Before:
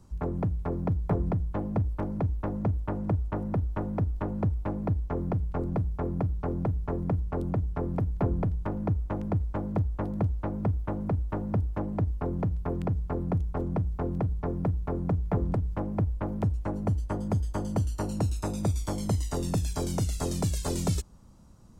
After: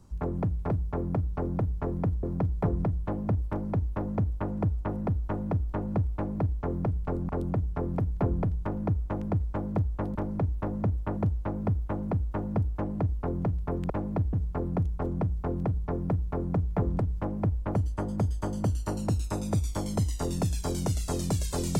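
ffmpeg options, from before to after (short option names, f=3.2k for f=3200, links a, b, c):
-filter_complex "[0:a]asplit=9[a][b][c][d][e][f][g][h][i];[a]atrim=end=0.702[j];[b]atrim=start=5.758:end=7.292[k];[c]atrim=start=0.698:end=5.762[l];[d]atrim=start=7.288:end=10.152[m];[e]atrim=start=1.958:end=2.982[n];[f]atrim=start=10.148:end=12.882[o];[g]atrim=start=4.608:end=5.042[p];[h]atrim=start=12.878:end=16.302[q];[i]atrim=start=16.868[r];[j][k]acrossfade=d=0.004:c1=hsin:c2=hsin[s];[s][l]acrossfade=d=0.004:c1=hsin:c2=hsin[t];[t][m]acrossfade=d=0.004:c1=hsin:c2=hsin[u];[u][n]acrossfade=d=0.004:c1=hsin:c2=hsin[v];[v][o]acrossfade=d=0.004:c1=hsin:c2=hsin[w];[w][p]acrossfade=d=0.004:c1=hsin:c2=hsin[x];[x][q]acrossfade=d=0.004:c1=hsin:c2=hsin[y];[y][r]acrossfade=d=0.004:c1=hsin:c2=hsin"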